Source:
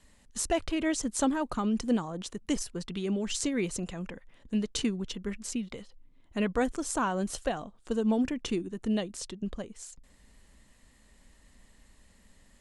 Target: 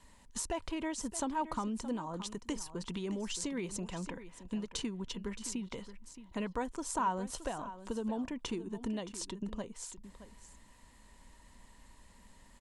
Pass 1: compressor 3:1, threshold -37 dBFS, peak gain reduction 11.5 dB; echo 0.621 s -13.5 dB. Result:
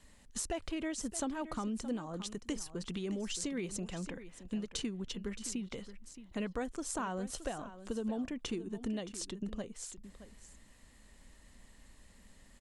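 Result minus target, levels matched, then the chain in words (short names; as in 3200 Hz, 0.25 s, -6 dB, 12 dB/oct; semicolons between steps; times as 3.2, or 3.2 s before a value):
1000 Hz band -6.0 dB
compressor 3:1, threshold -37 dBFS, peak gain reduction 11.5 dB; bell 960 Hz +13 dB 0.22 oct; echo 0.621 s -13.5 dB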